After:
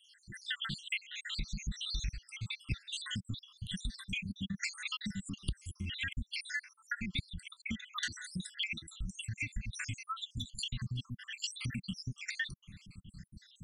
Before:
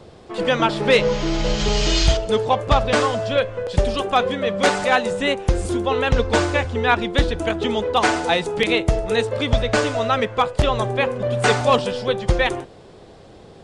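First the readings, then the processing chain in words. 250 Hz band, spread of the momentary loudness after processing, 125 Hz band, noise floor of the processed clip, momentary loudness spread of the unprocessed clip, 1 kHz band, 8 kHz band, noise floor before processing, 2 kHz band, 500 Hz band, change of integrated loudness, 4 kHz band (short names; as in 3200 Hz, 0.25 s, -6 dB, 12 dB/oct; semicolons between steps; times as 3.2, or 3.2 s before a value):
-20.0 dB, 7 LU, -17.0 dB, -70 dBFS, 5 LU, -30.5 dB, -13.5 dB, -44 dBFS, -16.5 dB, under -40 dB, -20.0 dB, -14.0 dB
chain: random spectral dropouts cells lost 80%; elliptic band-stop 200–1800 Hz, stop band 60 dB; compressor 6:1, threshold -37 dBFS, peak gain reduction 22 dB; gain +2 dB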